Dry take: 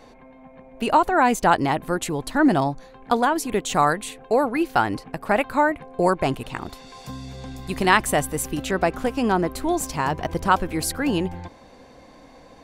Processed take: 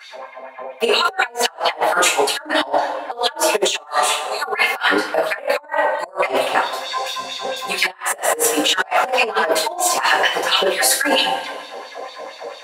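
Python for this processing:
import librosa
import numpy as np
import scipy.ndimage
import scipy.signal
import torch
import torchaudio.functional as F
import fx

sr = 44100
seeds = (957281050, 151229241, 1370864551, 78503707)

y = fx.filter_lfo_highpass(x, sr, shape='sine', hz=4.4, low_hz=480.0, high_hz=3900.0, q=4.8)
y = fx.rev_double_slope(y, sr, seeds[0], early_s=0.34, late_s=1.5, knee_db=-18, drr_db=-9.0)
y = fx.over_compress(y, sr, threshold_db=-16.0, ratio=-0.5)
y = y * librosa.db_to_amplitude(-3.0)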